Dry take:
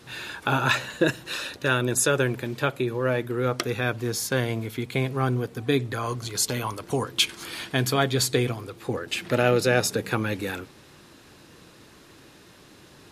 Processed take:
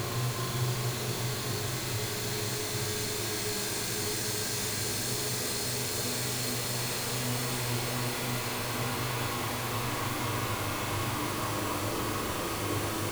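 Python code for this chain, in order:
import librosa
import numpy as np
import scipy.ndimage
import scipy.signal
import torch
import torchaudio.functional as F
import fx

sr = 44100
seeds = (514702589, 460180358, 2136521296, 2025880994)

p1 = np.sign(x) * np.sqrt(np.mean(np.square(x)))
p2 = fx.paulstretch(p1, sr, seeds[0], factor=21.0, window_s=0.5, from_s=6.18)
p3 = p2 + fx.room_flutter(p2, sr, wall_m=6.9, rt60_s=0.38, dry=0)
y = F.gain(torch.from_numpy(p3), -6.5).numpy()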